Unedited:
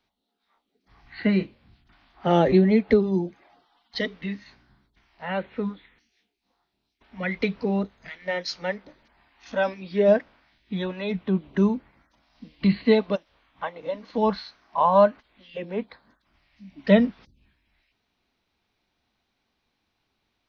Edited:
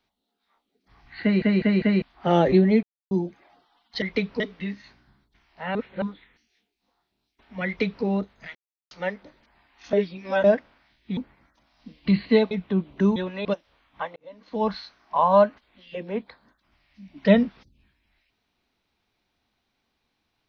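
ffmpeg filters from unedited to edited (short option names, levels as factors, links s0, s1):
-filter_complex "[0:a]asplit=20[s0][s1][s2][s3][s4][s5][s6][s7][s8][s9][s10][s11][s12][s13][s14][s15][s16][s17][s18][s19];[s0]atrim=end=1.422[s20];[s1]atrim=start=1.218:end=1.422[s21];[s2]atrim=start=1.218:end=1.422[s22];[s3]atrim=start=1.218:end=1.422[s23];[s4]atrim=start=2.018:end=2.83,asetpts=PTS-STARTPTS,afade=t=out:st=0.808:d=0.004:c=hsin[s24];[s5]atrim=start=2.83:end=3.11,asetpts=PTS-STARTPTS,volume=0[s25];[s6]atrim=start=3.11:end=4.022,asetpts=PTS-STARTPTS,afade=t=in:d=0.004:c=hsin[s26];[s7]atrim=start=7.278:end=7.662[s27];[s8]atrim=start=4.018:end=5.372[s28];[s9]atrim=start=5.368:end=5.642,asetpts=PTS-STARTPTS,areverse[s29];[s10]atrim=start=5.638:end=8.17,asetpts=PTS-STARTPTS,afade=t=out:st=2.528:d=0.004:c=hsin[s30];[s11]atrim=start=8.17:end=8.53,asetpts=PTS-STARTPTS,volume=0[s31];[s12]atrim=start=8.53:end=9.552,asetpts=PTS-STARTPTS,afade=t=in:d=0.004:c=hsin[s32];[s13]atrim=start=9.548:end=10.062,asetpts=PTS-STARTPTS,areverse[s33];[s14]atrim=start=10.058:end=10.792[s34];[s15]atrim=start=11.728:end=13.072[s35];[s16]atrim=start=11.078:end=11.732[s36];[s17]atrim=start=10.788:end=11.082[s37];[s18]atrim=start=13.068:end=13.78,asetpts=PTS-STARTPTS,afade=t=out:st=0.708:d=0.004:c=hsin[s38];[s19]atrim=start=13.78,asetpts=PTS-STARTPTS,afade=t=in:d=0.63[s39];[s20][s21]acrossfade=d=0.004:c1=hsin:c2=hsin[s40];[s40][s22]acrossfade=d=0.004:c1=hsin:c2=hsin[s41];[s41][s23]acrossfade=d=0.004:c1=hsin:c2=hsin[s42];[s24][s25][s26]concat=n=3:v=0:a=1[s43];[s42][s43]acrossfade=d=0.004:c1=hsin:c2=hsin[s44];[s44][s27]acrossfade=d=0.004:c1=hsin:c2=hsin[s45];[s45][s28]acrossfade=d=0.004:c1=hsin:c2=hsin[s46];[s46][s29]acrossfade=d=0.004:c1=hsin:c2=hsin[s47];[s30][s31][s32]concat=n=3:v=0:a=1[s48];[s47][s48]acrossfade=d=0.004:c1=hsin:c2=hsin[s49];[s49][s33]acrossfade=d=0.004:c1=hsin:c2=hsin[s50];[s50][s34]acrossfade=d=0.004:c1=hsin:c2=hsin[s51];[s51][s35]acrossfade=d=0.004:c1=hsin:c2=hsin[s52];[s52][s36]acrossfade=d=0.004:c1=hsin:c2=hsin[s53];[s53][s37]acrossfade=d=0.004:c1=hsin:c2=hsin[s54];[s38][s39]concat=n=2:v=0:a=1[s55];[s54][s55]acrossfade=d=0.004:c1=hsin:c2=hsin"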